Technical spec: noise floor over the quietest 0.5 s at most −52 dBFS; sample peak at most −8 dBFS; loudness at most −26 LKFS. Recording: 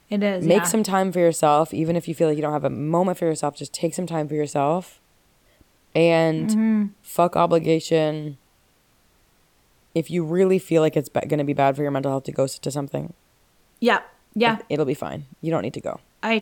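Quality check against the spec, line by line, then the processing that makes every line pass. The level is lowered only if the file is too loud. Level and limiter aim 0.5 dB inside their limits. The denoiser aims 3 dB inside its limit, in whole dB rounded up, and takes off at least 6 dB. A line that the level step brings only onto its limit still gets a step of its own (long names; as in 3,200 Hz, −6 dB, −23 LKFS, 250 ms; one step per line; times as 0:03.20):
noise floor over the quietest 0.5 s −61 dBFS: in spec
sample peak −6.0 dBFS: out of spec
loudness −22.0 LKFS: out of spec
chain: level −4.5 dB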